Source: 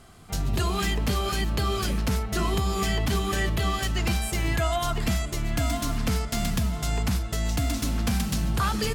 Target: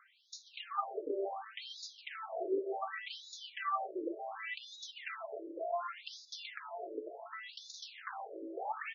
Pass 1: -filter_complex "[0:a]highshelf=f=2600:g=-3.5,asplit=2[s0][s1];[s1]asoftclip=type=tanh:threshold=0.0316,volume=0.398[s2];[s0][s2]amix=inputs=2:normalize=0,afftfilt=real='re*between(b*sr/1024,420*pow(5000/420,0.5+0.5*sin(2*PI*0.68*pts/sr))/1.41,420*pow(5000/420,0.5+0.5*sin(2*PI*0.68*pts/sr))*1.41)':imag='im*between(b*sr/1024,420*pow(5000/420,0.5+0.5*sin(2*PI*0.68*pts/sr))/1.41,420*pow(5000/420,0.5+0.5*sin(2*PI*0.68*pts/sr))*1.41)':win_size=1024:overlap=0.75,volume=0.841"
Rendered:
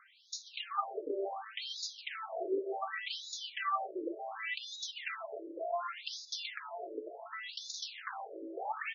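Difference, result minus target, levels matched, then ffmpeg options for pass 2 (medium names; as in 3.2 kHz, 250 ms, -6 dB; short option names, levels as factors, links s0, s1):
4 kHz band +4.0 dB
-filter_complex "[0:a]highshelf=f=2600:g=-12.5,asplit=2[s0][s1];[s1]asoftclip=type=tanh:threshold=0.0316,volume=0.398[s2];[s0][s2]amix=inputs=2:normalize=0,afftfilt=real='re*between(b*sr/1024,420*pow(5000/420,0.5+0.5*sin(2*PI*0.68*pts/sr))/1.41,420*pow(5000/420,0.5+0.5*sin(2*PI*0.68*pts/sr))*1.41)':imag='im*between(b*sr/1024,420*pow(5000/420,0.5+0.5*sin(2*PI*0.68*pts/sr))/1.41,420*pow(5000/420,0.5+0.5*sin(2*PI*0.68*pts/sr))*1.41)':win_size=1024:overlap=0.75,volume=0.841"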